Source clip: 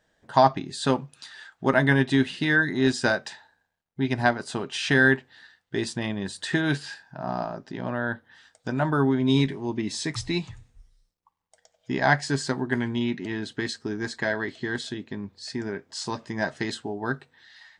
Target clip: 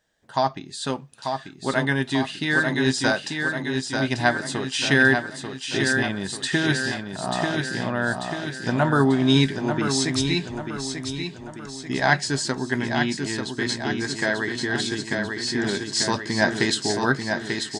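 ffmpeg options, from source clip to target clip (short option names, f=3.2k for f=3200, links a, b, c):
-af "aecho=1:1:890|1780|2670|3560|4450|5340:0.501|0.256|0.13|0.0665|0.0339|0.0173,dynaudnorm=f=270:g=17:m=13.5dB,highshelf=f=2.9k:g=7.5,volume=-5dB"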